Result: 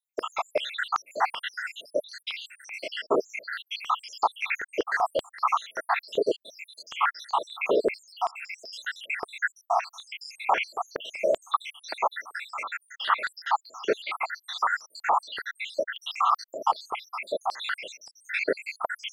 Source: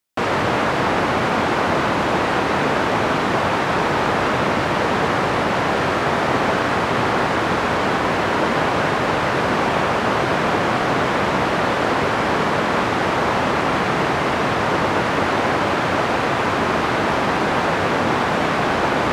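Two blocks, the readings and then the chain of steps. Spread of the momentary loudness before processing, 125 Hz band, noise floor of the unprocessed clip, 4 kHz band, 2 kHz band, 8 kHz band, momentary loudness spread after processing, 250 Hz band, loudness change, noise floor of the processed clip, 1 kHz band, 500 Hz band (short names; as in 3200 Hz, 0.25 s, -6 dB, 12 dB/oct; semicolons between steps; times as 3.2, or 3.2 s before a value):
0 LU, under -35 dB, -21 dBFS, -9.0 dB, -11.0 dB, -12.0 dB, 9 LU, -21.0 dB, -10.5 dB, -71 dBFS, -9.5 dB, -11.0 dB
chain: random spectral dropouts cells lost 84%; stepped high-pass 5.2 Hz 420–4700 Hz; gain -5 dB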